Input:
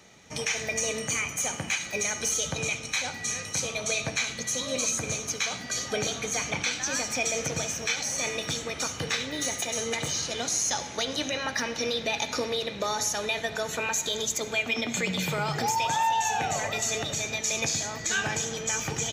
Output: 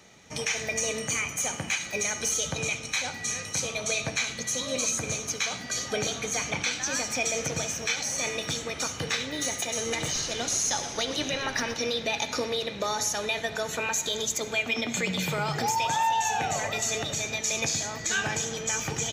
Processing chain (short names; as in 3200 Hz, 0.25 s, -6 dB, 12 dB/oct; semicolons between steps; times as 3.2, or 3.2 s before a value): 9.72–11.74 frequency-shifting echo 0.12 s, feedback 56%, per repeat -140 Hz, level -11 dB